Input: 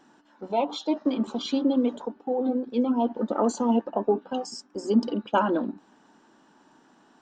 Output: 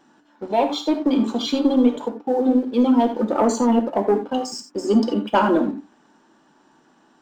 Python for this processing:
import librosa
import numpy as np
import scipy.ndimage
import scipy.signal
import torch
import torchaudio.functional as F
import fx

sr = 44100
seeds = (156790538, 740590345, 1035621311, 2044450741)

y = fx.high_shelf(x, sr, hz=3000.0, db=10.5, at=(2.78, 3.25))
y = fx.leveller(y, sr, passes=1)
y = fx.rev_gated(y, sr, seeds[0], gate_ms=110, shape='flat', drr_db=6.5)
y = y * 10.0 ** (2.5 / 20.0)